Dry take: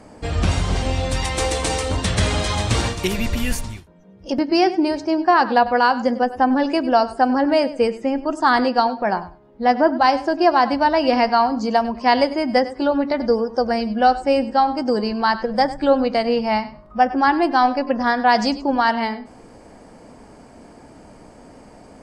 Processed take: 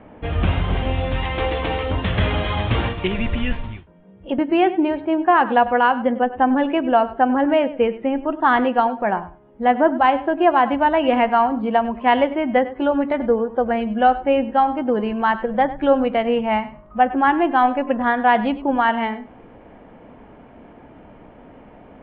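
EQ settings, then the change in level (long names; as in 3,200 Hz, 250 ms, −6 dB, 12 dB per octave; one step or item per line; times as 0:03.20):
Butterworth low-pass 3,400 Hz 72 dB per octave
0.0 dB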